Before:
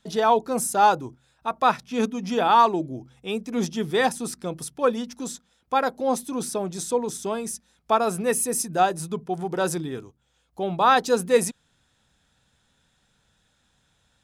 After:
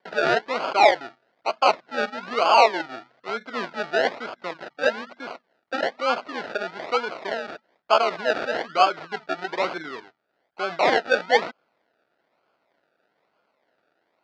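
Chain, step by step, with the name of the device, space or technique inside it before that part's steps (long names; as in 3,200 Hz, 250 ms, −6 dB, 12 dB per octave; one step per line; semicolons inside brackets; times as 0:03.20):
circuit-bent sampling toy (sample-and-hold swept by an LFO 33×, swing 60% 1.1 Hz; loudspeaker in its box 410–4,700 Hz, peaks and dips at 660 Hz +6 dB, 1,400 Hz +9 dB, 2,000 Hz +4 dB, 4,500 Hz +3 dB)
level −1 dB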